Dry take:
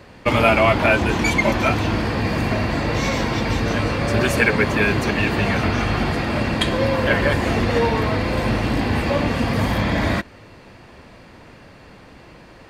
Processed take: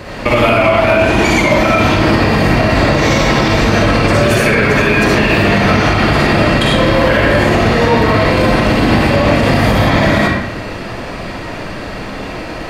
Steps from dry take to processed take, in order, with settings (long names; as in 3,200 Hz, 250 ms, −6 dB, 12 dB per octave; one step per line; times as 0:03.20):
downward compressor, threshold −25 dBFS, peak gain reduction 13 dB
convolution reverb RT60 0.90 s, pre-delay 25 ms, DRR −5.5 dB
boost into a limiter +15 dB
level −1 dB